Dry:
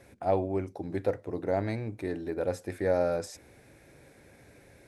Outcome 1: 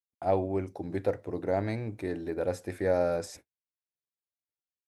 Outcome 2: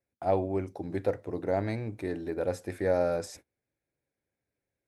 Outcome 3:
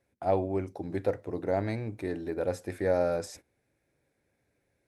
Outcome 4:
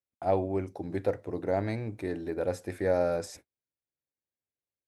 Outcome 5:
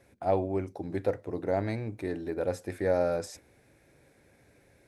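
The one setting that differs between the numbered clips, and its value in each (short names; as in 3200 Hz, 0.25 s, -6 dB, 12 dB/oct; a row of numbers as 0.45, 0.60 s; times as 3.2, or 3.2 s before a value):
gate, range: -59, -32, -20, -47, -6 dB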